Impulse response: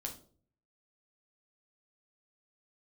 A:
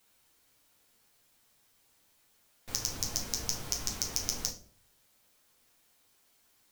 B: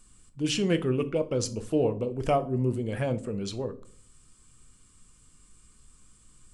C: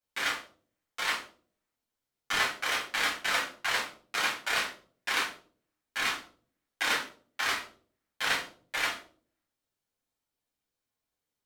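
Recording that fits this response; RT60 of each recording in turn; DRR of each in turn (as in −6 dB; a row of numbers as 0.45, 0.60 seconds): A; 0.50, 0.50, 0.45 seconds; 0.0, 9.5, −9.5 decibels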